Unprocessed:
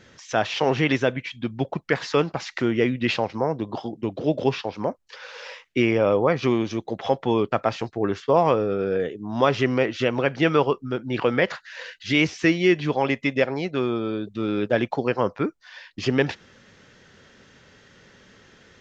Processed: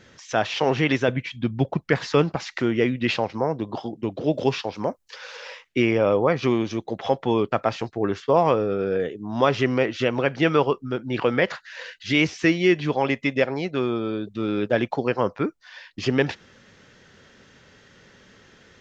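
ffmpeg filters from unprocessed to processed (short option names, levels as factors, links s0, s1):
-filter_complex "[0:a]asettb=1/sr,asplit=3[s0][s1][s2];[s0]atrim=end=1.084[s3];[s1]atrim=start=1.08:end=2.36,asetpts=PTS-STARTPTS,afade=t=in:d=0.004:c=qsin,afade=t=out:st=1.276:d=0.004:c=qsin,equalizer=f=69:w=0.33:g=7[s4];[s2]atrim=start=2.356[s5];[s3][s4]acrossfade=d=0.004:c1=hsin:c2=qsin[s6];[s6][s5]acrossfade=d=0.004:c1=qsin:c2=hsin,asettb=1/sr,asplit=3[s7][s8][s9];[s7]atrim=end=4.344[s10];[s8]atrim=start=4.34:end=5.37,asetpts=PTS-STARTPTS,afade=t=in:d=0.004:c=qsin,afade=t=out:st=1.026:d=0.004:c=qsin,highshelf=f=6200:g=9.5[s11];[s9]atrim=start=5.366[s12];[s10][s11]acrossfade=d=0.004:c1=hsin:c2=qsin[s13];[s13][s12]acrossfade=d=0.004:c1=qsin:c2=hsin"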